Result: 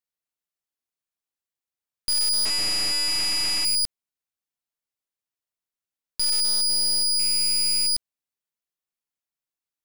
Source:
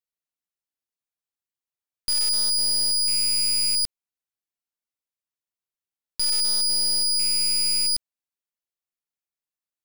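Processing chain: 2.45–3.65 CVSD 64 kbps

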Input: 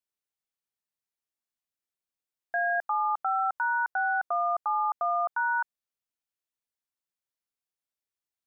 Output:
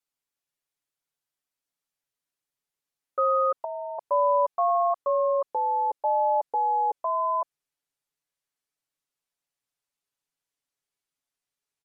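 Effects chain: speed glide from 83% -> 60%; comb 7.1 ms, depth 72%; gain +1 dB

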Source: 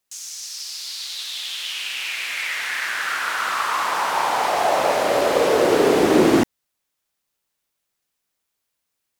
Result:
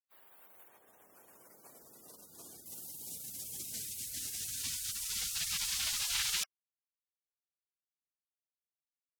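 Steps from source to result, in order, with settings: spectral gate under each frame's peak -30 dB weak; 0.68–2.66 high shelf 11000 Hz -12 dB

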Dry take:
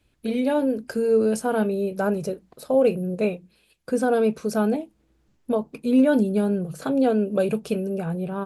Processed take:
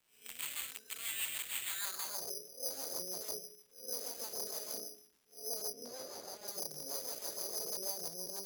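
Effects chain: time blur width 0.217 s; resonator 140 Hz, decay 0.26 s, harmonics odd, mix 90%; on a send at -9.5 dB: reverb RT60 0.65 s, pre-delay 3 ms; on the sum: dynamic EQ 900 Hz, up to +3 dB, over -54 dBFS, Q 1.9; wrapped overs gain 37 dB; band-pass sweep 2500 Hz -> 530 Hz, 1.65–2.31; careless resampling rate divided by 8×, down none, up zero stuff; rotary speaker horn 6.3 Hz; crackle 350/s -63 dBFS; 5.73–6.48 LPF 3200 Hz 6 dB/oct; gain +3.5 dB

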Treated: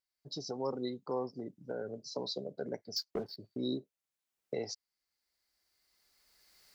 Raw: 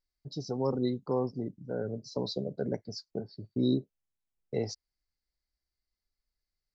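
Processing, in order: recorder AGC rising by 15 dB/s; HPF 530 Hz 6 dB/oct; 2.96–3.36 sample leveller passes 2; gain -1.5 dB

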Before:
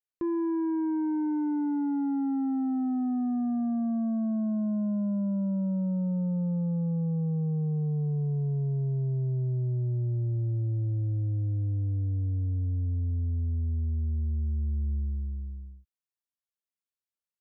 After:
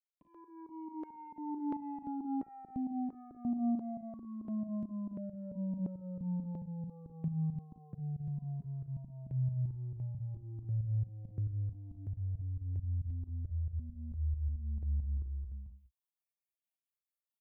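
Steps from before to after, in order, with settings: opening faded in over 1.57 s; fixed phaser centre 1500 Hz, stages 6; compressor, threshold -32 dBFS, peak gain reduction 4.5 dB; HPF 48 Hz 12 dB/oct; pump 136 bpm, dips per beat 2, -22 dB, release 0.133 s; early reflections 38 ms -9.5 dB, 55 ms -10.5 dB; step phaser 2.9 Hz 360–1500 Hz; gain +1 dB

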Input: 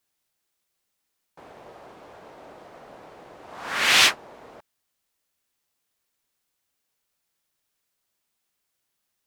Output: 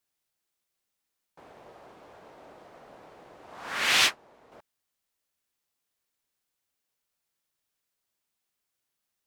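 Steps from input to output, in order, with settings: 3.97–4.52 upward expander 1.5:1, over -28 dBFS; gain -5 dB

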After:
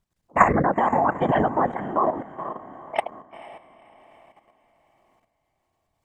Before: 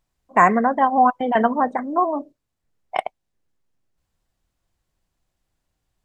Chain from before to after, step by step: whisperiser; diffused feedback echo 0.479 s, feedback 44%, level -14 dB; level quantiser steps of 11 dB; gain +2.5 dB

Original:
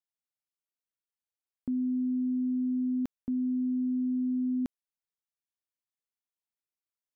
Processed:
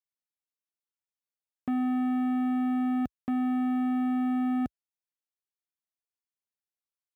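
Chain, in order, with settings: HPF 56 Hz 24 dB/oct; sample leveller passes 3

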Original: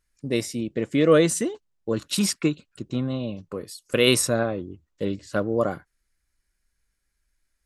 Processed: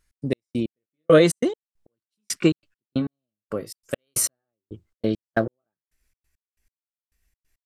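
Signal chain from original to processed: gliding pitch shift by +2.5 st starting unshifted; step gate "x.x..x....x" 137 bpm -60 dB; gain +4.5 dB

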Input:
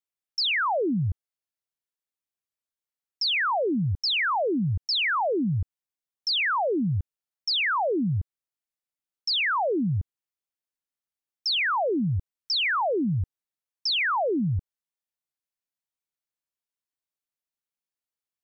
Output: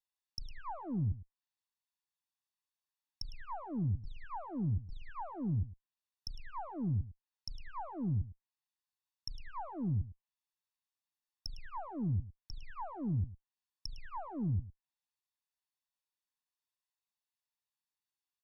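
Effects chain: minimum comb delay 1.1 ms; ten-band EQ 500 Hz -11 dB, 1000 Hz +9 dB, 4000 Hz +7 dB; treble ducked by the level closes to 390 Hz, closed at -28.5 dBFS; echo 0.106 s -16.5 dB; gain -5.5 dB

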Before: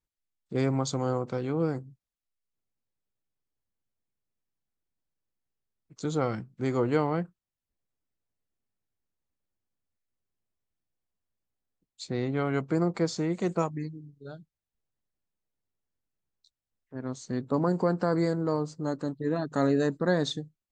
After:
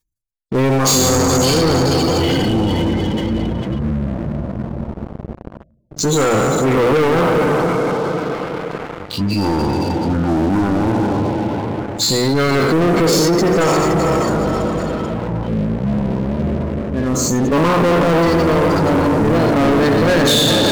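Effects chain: spectral trails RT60 1.85 s; echoes that change speed 0.136 s, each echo -7 st, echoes 2, each echo -6 dB; high shelf 3900 Hz +9.5 dB; notches 60/120/180/240/300/360 Hz; on a send: diffused feedback echo 0.465 s, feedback 47%, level -7 dB; on the sum: spectral gate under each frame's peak -20 dB strong; sample leveller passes 5; reverse; upward compressor, threshold -17 dBFS; reverse

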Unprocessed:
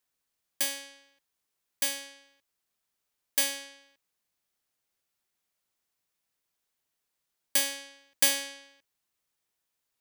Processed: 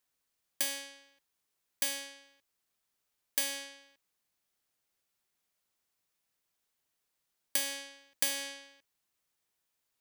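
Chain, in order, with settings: compressor 4:1, threshold -28 dBFS, peak gain reduction 9 dB

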